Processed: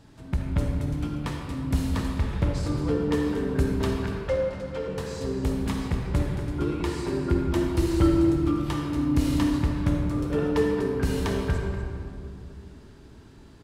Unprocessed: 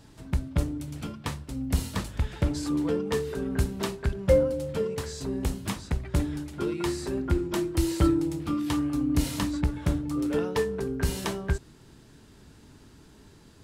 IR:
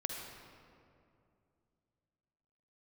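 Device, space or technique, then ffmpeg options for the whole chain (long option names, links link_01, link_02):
swimming-pool hall: -filter_complex "[0:a]asettb=1/sr,asplit=3[link_01][link_02][link_03];[link_01]atrim=end=4.044[link_04];[link_02]atrim=start=4.04:end=4.88,asetpts=PTS-STARTPTS,afade=type=in:duration=0.004:curve=qsin,afade=type=out:start_time=0.836:duration=0.004:curve=qsin,acrossover=split=570 7300:gain=0.2 1 0.2[link_05][link_06][link_07];[link_05][link_06][link_07]amix=inputs=3:normalize=0[link_08];[link_03]atrim=start=4.876[link_09];[link_04][link_08]acrossfade=duration=0.004:curve1=hsin:curve2=qsin[link_10];[link_10][link_09]acrossfade=duration=0.004:curve1=qsin:curve2=hsin[link_11];[1:a]atrim=start_sample=2205[link_12];[link_11][link_12]afir=irnorm=-1:irlink=0,highshelf=frequency=4800:gain=-7.5,aecho=1:1:242:0.251,volume=1dB"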